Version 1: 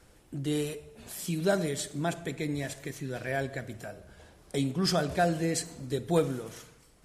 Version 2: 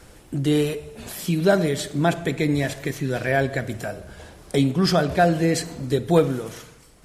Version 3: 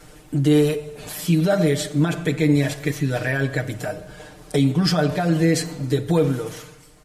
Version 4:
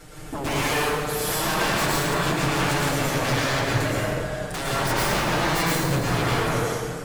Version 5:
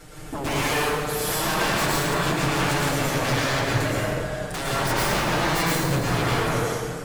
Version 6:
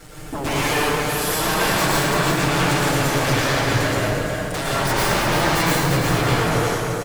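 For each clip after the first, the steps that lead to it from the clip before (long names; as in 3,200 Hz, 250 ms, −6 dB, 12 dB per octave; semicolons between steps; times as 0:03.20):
dynamic equaliser 8,300 Hz, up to −8 dB, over −53 dBFS, Q 0.82; in parallel at +0.5 dB: speech leveller within 3 dB 0.5 s; on the sum: level +3.5 dB
brickwall limiter −13 dBFS, peak gain reduction 7 dB; comb filter 6.6 ms, depth 84%
wave folding −25.5 dBFS; dense smooth reverb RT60 2.1 s, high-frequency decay 0.55×, pre-delay 95 ms, DRR −7 dB
no processing that can be heard
in parallel at −8 dB: bit reduction 7 bits; on the sum: single-tap delay 346 ms −6 dB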